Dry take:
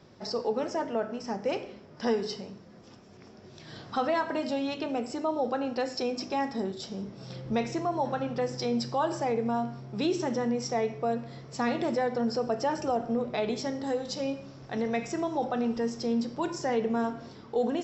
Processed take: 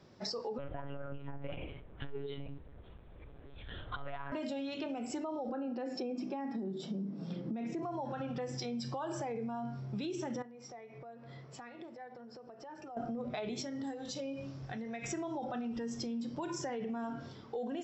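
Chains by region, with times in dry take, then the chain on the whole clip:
0:00.58–0:04.32: one-pitch LPC vocoder at 8 kHz 140 Hz + saturating transformer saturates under 180 Hz
0:05.49–0:07.83: Butterworth high-pass 150 Hz 96 dB per octave + spectral tilt −3 dB per octave
0:10.42–0:12.97: low-pass filter 2,300 Hz 6 dB per octave + low-shelf EQ 330 Hz −7.5 dB + downward compressor 16 to 1, threshold −43 dBFS
0:13.62–0:15.04: downward compressor 10 to 1, threshold −37 dBFS + double-tracking delay 22 ms −14 dB
whole clip: brickwall limiter −27 dBFS; noise reduction from a noise print of the clip's start 7 dB; downward compressor, threshold −38 dBFS; level +2.5 dB

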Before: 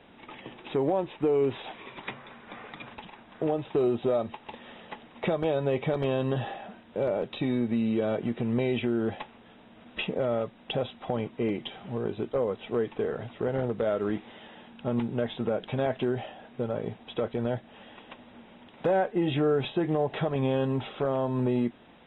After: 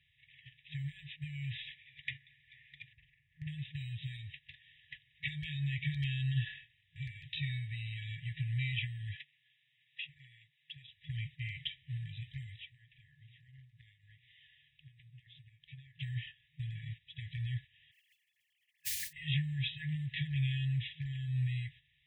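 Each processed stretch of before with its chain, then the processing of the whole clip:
0:02.93–0:03.47: low-pass filter 1,600 Hz + double-tracking delay 44 ms −3.5 dB
0:09.16–0:10.88: downward compressor 2 to 1, threshold −42 dBFS + high-pass filter 170 Hz 24 dB per octave
0:12.59–0:15.98: mains-hum notches 60/120/180/240/300/360/420/480/540/600 Hz + downward compressor 8 to 1, threshold −38 dBFS
0:17.91–0:19.13: three sine waves on the formant tracks + noise that follows the level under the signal 14 dB
whole clip: noise gate −40 dBFS, range −11 dB; high-pass filter 46 Hz; brick-wall band-stop 160–1,700 Hz

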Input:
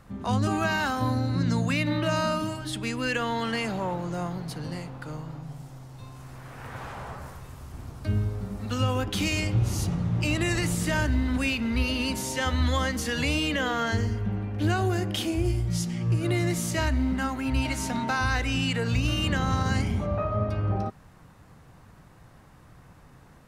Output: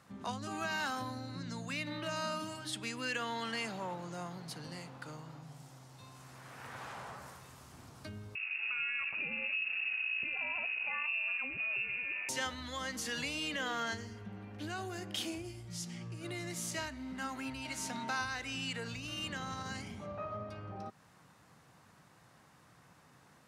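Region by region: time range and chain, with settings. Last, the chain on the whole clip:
0:08.35–0:12.29: downward compressor 10 to 1, threshold −28 dBFS + voice inversion scrambler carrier 2,700 Hz
whole clip: bass and treble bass +10 dB, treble +5 dB; downward compressor 2 to 1, threshold −26 dBFS; meter weighting curve A; level −6 dB

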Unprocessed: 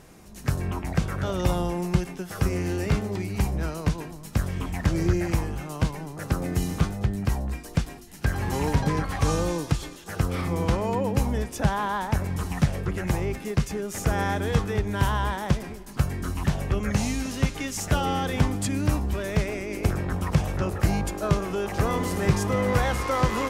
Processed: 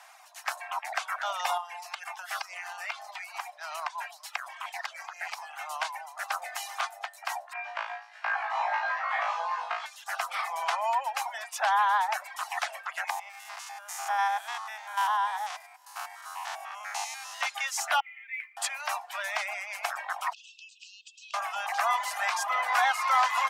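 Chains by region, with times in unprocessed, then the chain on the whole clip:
0:01.57–0:05.59: downward compressor 4 to 1, threshold −30 dBFS + auto-filter bell 1.7 Hz 950–5,000 Hz +7 dB
0:07.53–0:09.86: low-pass filter 2,200 Hz + downward compressor 3 to 1, threshold −25 dBFS + flutter between parallel walls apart 3.1 metres, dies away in 0.85 s
0:13.10–0:17.41: spectrum averaged block by block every 100 ms + Chebyshev high-pass with heavy ripple 230 Hz, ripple 9 dB + high-shelf EQ 3,000 Hz +10.5 dB
0:18.00–0:18.57: flat-topped band-pass 2,200 Hz, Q 5.4 + noise that follows the level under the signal 29 dB
0:20.33–0:21.34: linear-phase brick-wall band-pass 2,500–8,300 Hz + high-frequency loss of the air 63 metres + downward compressor 8 to 1, threshold −47 dBFS
whole clip: reverb reduction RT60 0.68 s; Butterworth high-pass 680 Hz 72 dB per octave; high-shelf EQ 5,000 Hz −8.5 dB; level +6 dB

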